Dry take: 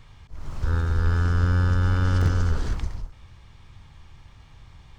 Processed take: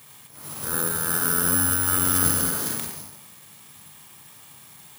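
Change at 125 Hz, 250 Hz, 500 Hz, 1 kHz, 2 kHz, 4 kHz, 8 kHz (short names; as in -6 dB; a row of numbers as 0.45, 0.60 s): -12.5 dB, +1.5 dB, +1.5 dB, +3.5 dB, +4.5 dB, +7.5 dB, n/a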